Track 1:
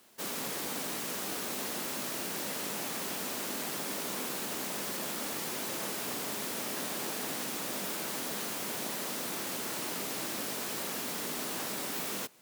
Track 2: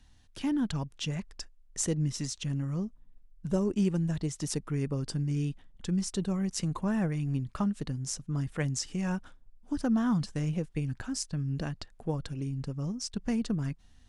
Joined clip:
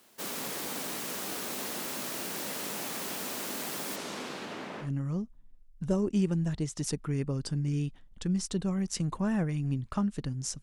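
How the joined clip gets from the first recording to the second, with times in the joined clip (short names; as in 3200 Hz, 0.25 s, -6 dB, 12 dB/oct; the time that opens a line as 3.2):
track 1
3.95–4.91 LPF 8000 Hz -> 1700 Hz
4.85 switch to track 2 from 2.48 s, crossfade 0.12 s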